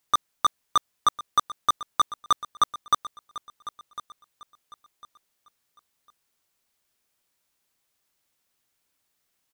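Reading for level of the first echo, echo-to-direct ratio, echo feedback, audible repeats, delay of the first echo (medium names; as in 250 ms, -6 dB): -16.0 dB, -15.5 dB, 28%, 2, 1052 ms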